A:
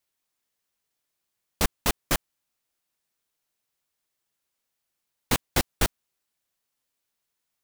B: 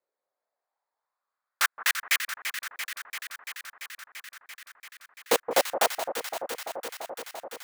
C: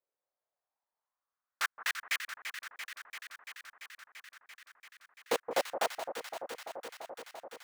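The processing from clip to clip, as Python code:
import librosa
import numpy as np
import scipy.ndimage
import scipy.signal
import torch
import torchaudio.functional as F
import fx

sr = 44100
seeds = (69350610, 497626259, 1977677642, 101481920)

y1 = fx.wiener(x, sr, points=15)
y1 = fx.filter_lfo_highpass(y1, sr, shape='saw_up', hz=0.38, low_hz=450.0, high_hz=3000.0, q=3.7)
y1 = fx.echo_alternate(y1, sr, ms=170, hz=1200.0, feedback_pct=89, wet_db=-8.0)
y2 = fx.high_shelf(y1, sr, hz=7000.0, db=-8.5)
y2 = y2 * 10.0 ** (-7.0 / 20.0)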